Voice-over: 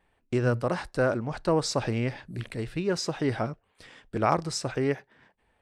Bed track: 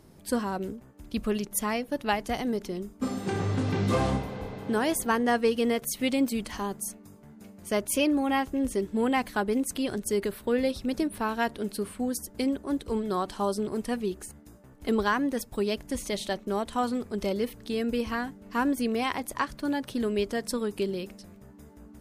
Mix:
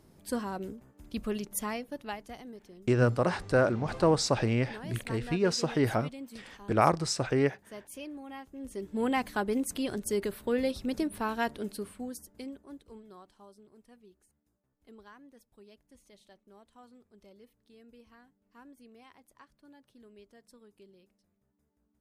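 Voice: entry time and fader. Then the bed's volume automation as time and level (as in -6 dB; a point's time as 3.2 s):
2.55 s, +0.5 dB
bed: 1.65 s -5 dB
2.57 s -18 dB
8.48 s -18 dB
9.05 s -3 dB
11.53 s -3 dB
13.53 s -27.5 dB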